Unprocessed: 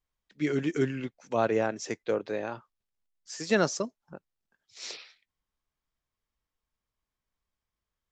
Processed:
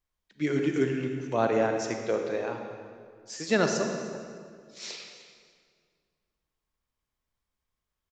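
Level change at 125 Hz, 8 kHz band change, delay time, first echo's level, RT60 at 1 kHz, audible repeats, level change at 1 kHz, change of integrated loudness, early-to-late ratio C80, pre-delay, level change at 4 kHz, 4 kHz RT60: +1.5 dB, +1.0 dB, 302 ms, −18.5 dB, 1.9 s, 1, +2.0 dB, +1.5 dB, 5.5 dB, 32 ms, +1.5 dB, 1.6 s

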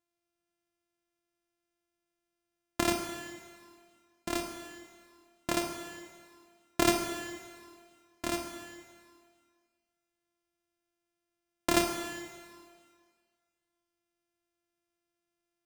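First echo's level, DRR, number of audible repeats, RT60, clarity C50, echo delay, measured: no echo audible, 5.0 dB, no echo audible, 1.9 s, 5.5 dB, no echo audible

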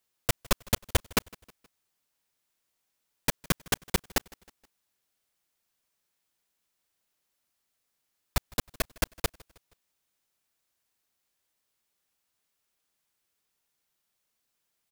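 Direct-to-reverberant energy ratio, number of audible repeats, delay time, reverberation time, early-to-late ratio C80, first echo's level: no reverb audible, 2, 158 ms, no reverb audible, no reverb audible, −24.0 dB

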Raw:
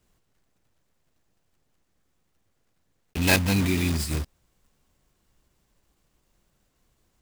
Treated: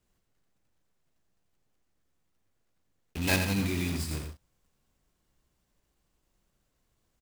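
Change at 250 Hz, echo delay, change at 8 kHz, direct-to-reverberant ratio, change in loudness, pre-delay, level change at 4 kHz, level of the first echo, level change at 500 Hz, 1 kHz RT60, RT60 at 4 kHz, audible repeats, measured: −6.0 dB, 86 ms, −6.0 dB, no reverb audible, −6.0 dB, no reverb audible, −6.0 dB, −7.0 dB, −6.0 dB, no reverb audible, no reverb audible, 2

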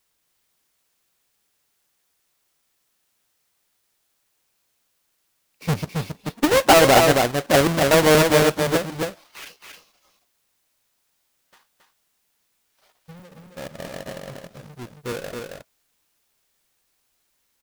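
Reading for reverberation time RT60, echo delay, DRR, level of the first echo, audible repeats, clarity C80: no reverb audible, 272 ms, no reverb audible, −4.0 dB, 1, no reverb audible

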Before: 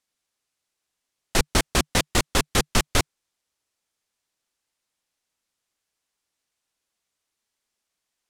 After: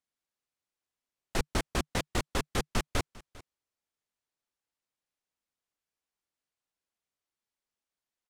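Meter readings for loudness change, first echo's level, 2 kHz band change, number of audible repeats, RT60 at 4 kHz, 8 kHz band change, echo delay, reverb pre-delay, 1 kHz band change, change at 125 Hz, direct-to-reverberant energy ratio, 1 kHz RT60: −10.5 dB, −21.0 dB, −10.5 dB, 1, no reverb audible, −14.0 dB, 399 ms, no reverb audible, −9.0 dB, −8.0 dB, no reverb audible, no reverb audible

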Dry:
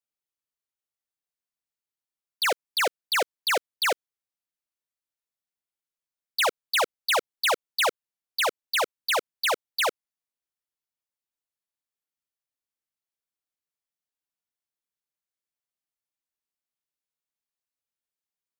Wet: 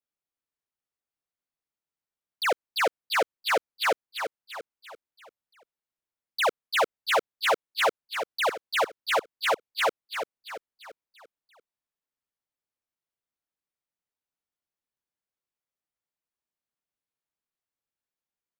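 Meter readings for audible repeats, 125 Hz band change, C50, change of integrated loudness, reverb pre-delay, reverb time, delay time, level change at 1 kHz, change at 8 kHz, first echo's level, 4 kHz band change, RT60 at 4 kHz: 4, can't be measured, no reverb audible, −1.5 dB, no reverb audible, no reverb audible, 341 ms, +1.0 dB, −6.5 dB, −7.5 dB, −4.0 dB, no reverb audible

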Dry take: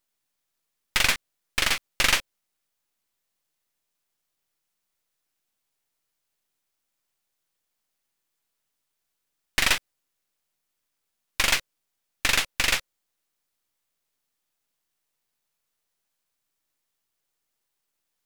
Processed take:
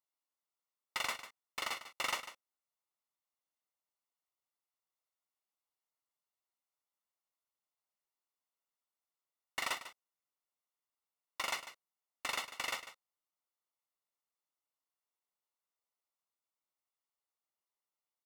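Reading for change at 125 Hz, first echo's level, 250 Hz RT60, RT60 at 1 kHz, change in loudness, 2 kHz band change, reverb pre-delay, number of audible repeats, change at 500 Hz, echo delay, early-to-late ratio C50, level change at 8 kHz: −25.5 dB, −13.0 dB, no reverb audible, no reverb audible, −15.5 dB, −15.5 dB, no reverb audible, 1, −11.5 dB, 147 ms, no reverb audible, −17.0 dB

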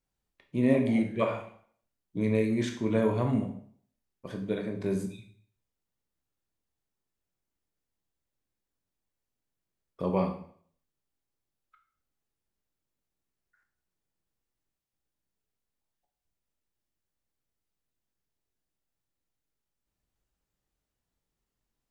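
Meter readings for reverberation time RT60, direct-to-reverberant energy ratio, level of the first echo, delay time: 0.55 s, 4.0 dB, no echo audible, no echo audible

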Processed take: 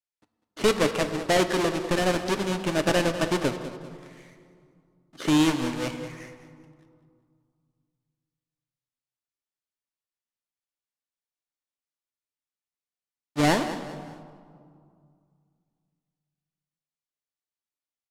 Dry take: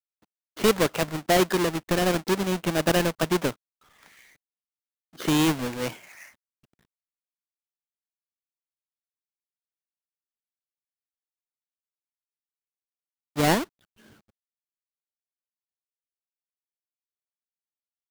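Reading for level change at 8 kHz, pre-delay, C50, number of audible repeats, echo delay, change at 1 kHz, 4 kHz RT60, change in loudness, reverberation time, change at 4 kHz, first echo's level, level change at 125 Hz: −2.0 dB, 3 ms, 9.0 dB, 3, 198 ms, −0.5 dB, 1.2 s, −0.5 dB, 2.2 s, −0.5 dB, −13.5 dB, −1.5 dB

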